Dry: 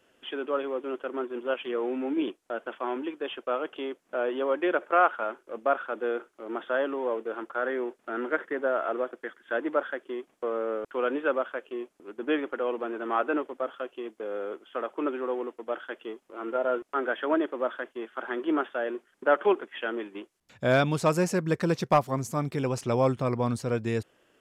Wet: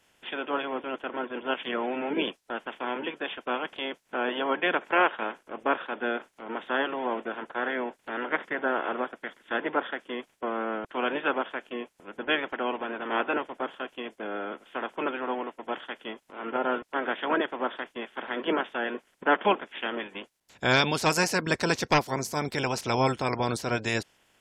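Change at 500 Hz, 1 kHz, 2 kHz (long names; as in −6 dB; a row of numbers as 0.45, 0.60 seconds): −3.0, +1.5, +4.5 decibels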